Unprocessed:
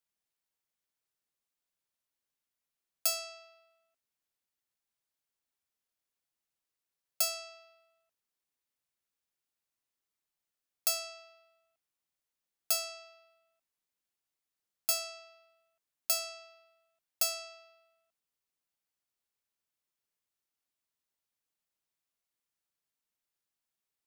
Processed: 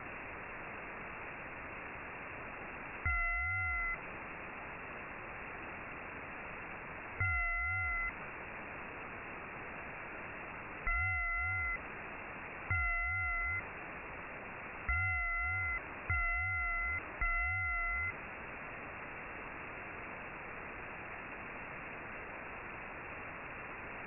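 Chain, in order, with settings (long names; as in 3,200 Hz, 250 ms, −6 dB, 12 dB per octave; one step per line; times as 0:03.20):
converter with a step at zero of −33.5 dBFS
tape wow and flutter 21 cents
voice inversion scrambler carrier 2,700 Hz
level +4.5 dB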